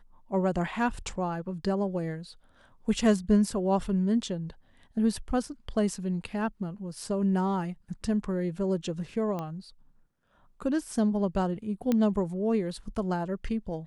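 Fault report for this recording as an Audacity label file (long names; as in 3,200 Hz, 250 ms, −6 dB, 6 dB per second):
9.390000	9.390000	click −22 dBFS
11.920000	11.920000	click −14 dBFS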